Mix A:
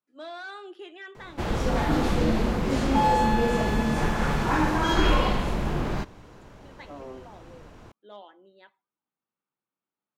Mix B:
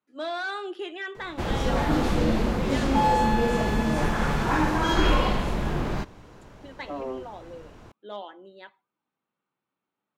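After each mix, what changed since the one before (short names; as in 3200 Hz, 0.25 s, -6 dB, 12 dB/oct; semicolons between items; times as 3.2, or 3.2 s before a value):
speech +8.0 dB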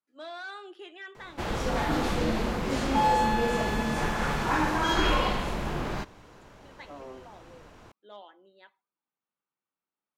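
speech -8.0 dB; master: add low shelf 440 Hz -6 dB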